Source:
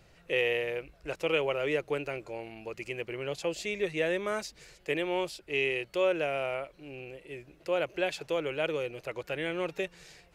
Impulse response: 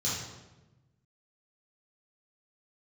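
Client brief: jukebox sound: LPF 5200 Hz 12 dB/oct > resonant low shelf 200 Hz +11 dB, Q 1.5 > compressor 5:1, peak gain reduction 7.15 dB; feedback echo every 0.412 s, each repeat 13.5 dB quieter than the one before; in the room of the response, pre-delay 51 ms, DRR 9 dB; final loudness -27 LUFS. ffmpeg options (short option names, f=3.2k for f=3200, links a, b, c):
-filter_complex "[0:a]aecho=1:1:412|824:0.211|0.0444,asplit=2[a][b];[1:a]atrim=start_sample=2205,adelay=51[c];[b][c]afir=irnorm=-1:irlink=0,volume=-15.5dB[d];[a][d]amix=inputs=2:normalize=0,lowpass=5.2k,lowshelf=f=200:t=q:w=1.5:g=11,acompressor=threshold=-29dB:ratio=5,volume=7.5dB"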